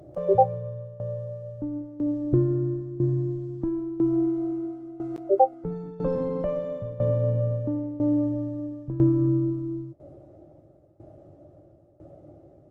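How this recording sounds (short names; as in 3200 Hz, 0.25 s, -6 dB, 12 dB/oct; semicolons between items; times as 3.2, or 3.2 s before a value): tremolo saw down 1 Hz, depth 85%; Opus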